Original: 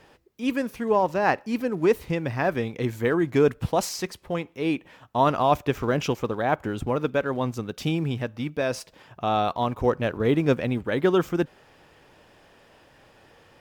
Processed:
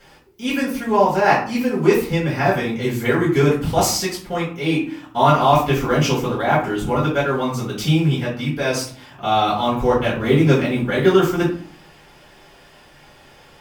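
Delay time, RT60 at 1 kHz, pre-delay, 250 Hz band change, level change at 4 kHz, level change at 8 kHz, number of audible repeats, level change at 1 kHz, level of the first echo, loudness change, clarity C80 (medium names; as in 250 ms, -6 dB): no echo, 0.45 s, 3 ms, +6.5 dB, +10.0 dB, +11.0 dB, no echo, +7.0 dB, no echo, +6.5 dB, 11.0 dB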